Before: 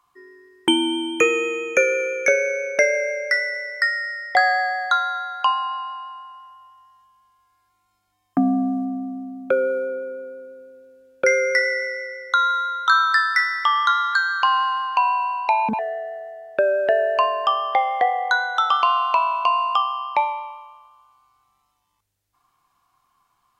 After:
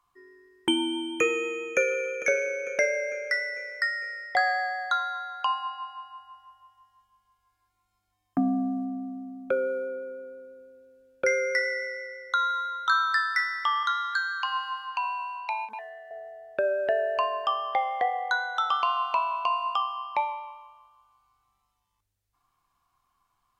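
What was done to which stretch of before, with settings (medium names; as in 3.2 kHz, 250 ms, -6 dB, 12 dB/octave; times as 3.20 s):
1.31–1.99 s: echo throw 450 ms, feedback 55%, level -13 dB
13.83–16.11 s: high-pass 1.1 kHz
whole clip: bass shelf 74 Hz +11.5 dB; de-hum 150.4 Hz, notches 9; endings held to a fixed fall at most 230 dB/s; trim -7 dB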